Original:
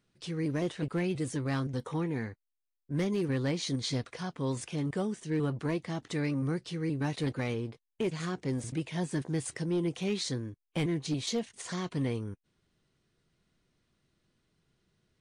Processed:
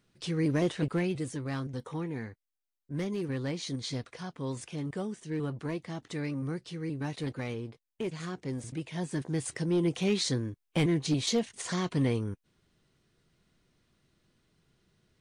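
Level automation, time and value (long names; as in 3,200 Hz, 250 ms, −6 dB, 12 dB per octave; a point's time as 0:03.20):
0:00.80 +4 dB
0:01.36 −3 dB
0:08.77 −3 dB
0:09.96 +4 dB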